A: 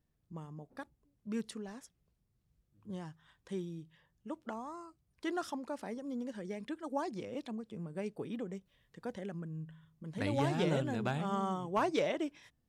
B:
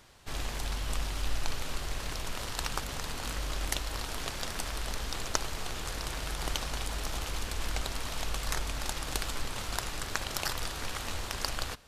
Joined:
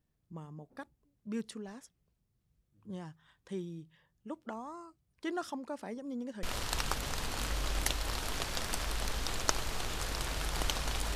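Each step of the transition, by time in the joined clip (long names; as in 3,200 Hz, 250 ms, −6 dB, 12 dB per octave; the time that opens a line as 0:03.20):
A
0:06.43: continue with B from 0:02.29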